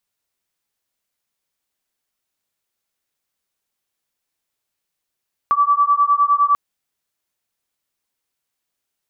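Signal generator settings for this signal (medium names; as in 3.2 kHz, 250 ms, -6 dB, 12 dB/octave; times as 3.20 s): beating tones 1.15 kHz, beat 9.8 Hz, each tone -15.5 dBFS 1.04 s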